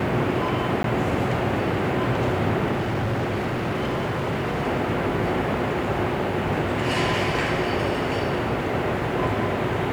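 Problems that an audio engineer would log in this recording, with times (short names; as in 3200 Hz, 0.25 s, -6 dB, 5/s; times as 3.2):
0.83–0.84 gap 12 ms
2.71–4.63 clipped -21 dBFS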